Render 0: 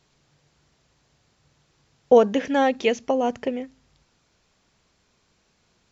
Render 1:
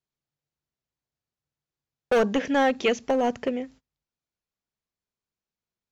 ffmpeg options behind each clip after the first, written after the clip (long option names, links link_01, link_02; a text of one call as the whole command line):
ffmpeg -i in.wav -filter_complex "[0:a]agate=range=-28dB:threshold=-47dB:ratio=16:detection=peak,acrossover=split=1100[link_01][link_02];[link_01]asoftclip=type=hard:threshold=-18.5dB[link_03];[link_03][link_02]amix=inputs=2:normalize=0" out.wav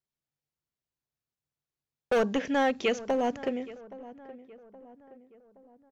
ffmpeg -i in.wav -filter_complex "[0:a]asplit=2[link_01][link_02];[link_02]adelay=821,lowpass=frequency=1500:poles=1,volume=-17dB,asplit=2[link_03][link_04];[link_04]adelay=821,lowpass=frequency=1500:poles=1,volume=0.5,asplit=2[link_05][link_06];[link_06]adelay=821,lowpass=frequency=1500:poles=1,volume=0.5,asplit=2[link_07][link_08];[link_08]adelay=821,lowpass=frequency=1500:poles=1,volume=0.5[link_09];[link_01][link_03][link_05][link_07][link_09]amix=inputs=5:normalize=0,volume=-4dB" out.wav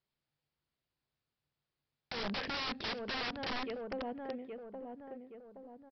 ffmpeg -i in.wav -af "acompressor=threshold=-37dB:ratio=3,aresample=11025,aeval=exprs='(mod(70.8*val(0)+1,2)-1)/70.8':channel_layout=same,aresample=44100,volume=5dB" out.wav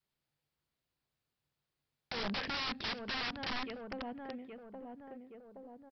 ffmpeg -i in.wav -af "adynamicequalizer=threshold=0.00178:dfrequency=480:dqfactor=1.2:tfrequency=480:tqfactor=1.2:attack=5:release=100:ratio=0.375:range=3.5:mode=cutabove:tftype=bell,volume=1dB" out.wav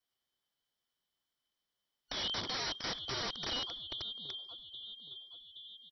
ffmpeg -i in.wav -af "afftfilt=real='real(if(lt(b,272),68*(eq(floor(b/68),0)*1+eq(floor(b/68),1)*3+eq(floor(b/68),2)*0+eq(floor(b/68),3)*2)+mod(b,68),b),0)':imag='imag(if(lt(b,272),68*(eq(floor(b/68),0)*1+eq(floor(b/68),1)*3+eq(floor(b/68),2)*0+eq(floor(b/68),3)*2)+mod(b,68),b),0)':win_size=2048:overlap=0.75" out.wav